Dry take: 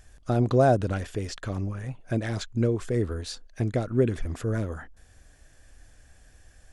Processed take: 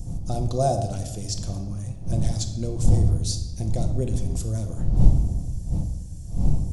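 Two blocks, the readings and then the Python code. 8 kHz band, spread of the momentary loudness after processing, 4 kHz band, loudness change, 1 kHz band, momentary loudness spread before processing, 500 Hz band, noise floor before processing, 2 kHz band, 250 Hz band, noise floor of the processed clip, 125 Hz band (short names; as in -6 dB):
+10.5 dB, 10 LU, +5.0 dB, +1.5 dB, -0.5 dB, 13 LU, -4.0 dB, -56 dBFS, under -10 dB, -1.0 dB, -35 dBFS, +5.5 dB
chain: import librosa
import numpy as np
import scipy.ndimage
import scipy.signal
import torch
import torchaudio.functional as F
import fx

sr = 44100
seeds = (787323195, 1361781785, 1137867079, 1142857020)

y = fx.dmg_wind(x, sr, seeds[0], corner_hz=120.0, level_db=-24.0)
y = fx.curve_eq(y, sr, hz=(110.0, 420.0, 710.0, 1600.0, 5800.0), db=(0, -9, -1, -18, 11))
y = fx.room_shoebox(y, sr, seeds[1], volume_m3=740.0, walls='mixed', distance_m=0.86)
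y = F.gain(torch.from_numpy(y), -1.0).numpy()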